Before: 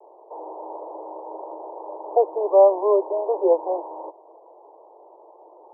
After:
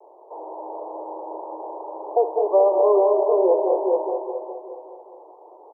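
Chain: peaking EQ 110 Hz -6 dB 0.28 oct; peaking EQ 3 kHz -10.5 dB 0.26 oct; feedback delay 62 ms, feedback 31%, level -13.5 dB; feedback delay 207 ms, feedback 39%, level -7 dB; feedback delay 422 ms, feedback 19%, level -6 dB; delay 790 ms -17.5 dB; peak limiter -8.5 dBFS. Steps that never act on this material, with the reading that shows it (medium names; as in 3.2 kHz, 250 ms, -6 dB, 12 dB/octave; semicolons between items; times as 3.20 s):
peaking EQ 110 Hz: input has nothing below 300 Hz; peaking EQ 3 kHz: input has nothing above 1.1 kHz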